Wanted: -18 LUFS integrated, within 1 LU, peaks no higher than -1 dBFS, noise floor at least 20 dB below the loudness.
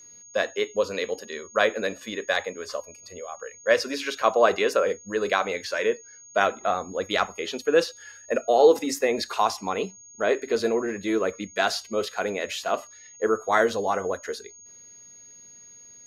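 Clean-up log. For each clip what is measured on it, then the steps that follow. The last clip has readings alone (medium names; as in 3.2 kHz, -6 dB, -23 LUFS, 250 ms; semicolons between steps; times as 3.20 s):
steady tone 6.6 kHz; tone level -46 dBFS; loudness -25.5 LUFS; peak level -5.0 dBFS; loudness target -18.0 LUFS
-> band-stop 6.6 kHz, Q 30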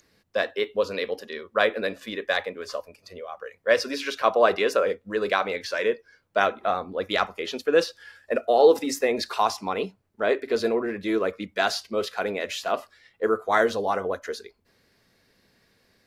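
steady tone not found; loudness -25.5 LUFS; peak level -5.0 dBFS; loudness target -18.0 LUFS
-> trim +7.5 dB; peak limiter -1 dBFS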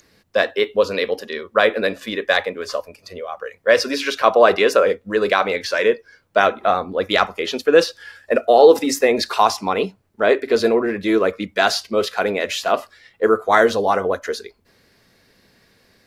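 loudness -18.5 LUFS; peak level -1.0 dBFS; noise floor -60 dBFS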